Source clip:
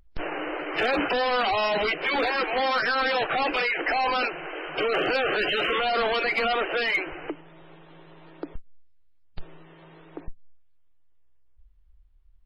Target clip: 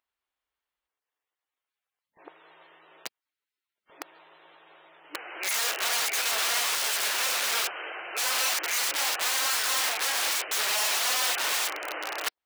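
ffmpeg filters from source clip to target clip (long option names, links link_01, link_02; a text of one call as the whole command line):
ffmpeg -i in.wav -af "areverse,aeval=exprs='(mod(14.1*val(0)+1,2)-1)/14.1':channel_layout=same,highpass=690" out.wav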